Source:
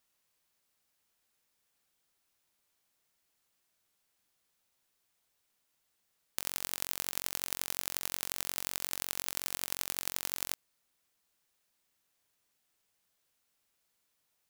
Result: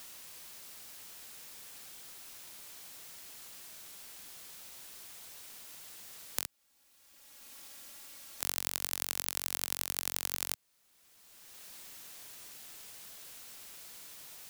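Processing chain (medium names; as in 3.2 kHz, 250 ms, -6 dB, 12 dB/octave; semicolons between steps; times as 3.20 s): 6.45–8.41 s: comb filter that takes the minimum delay 3.6 ms; three bands compressed up and down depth 70%; trim +9 dB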